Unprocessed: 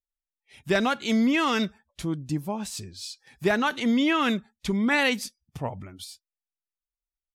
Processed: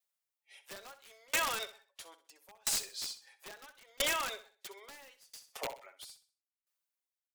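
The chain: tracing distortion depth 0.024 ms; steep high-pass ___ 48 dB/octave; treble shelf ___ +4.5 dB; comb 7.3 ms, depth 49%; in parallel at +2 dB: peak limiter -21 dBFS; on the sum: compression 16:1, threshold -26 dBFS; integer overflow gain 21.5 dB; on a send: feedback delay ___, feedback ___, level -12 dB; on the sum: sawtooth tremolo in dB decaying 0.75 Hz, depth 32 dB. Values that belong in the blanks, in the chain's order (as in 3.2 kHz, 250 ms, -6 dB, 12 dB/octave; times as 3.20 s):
470 Hz, 8.5 kHz, 64 ms, 42%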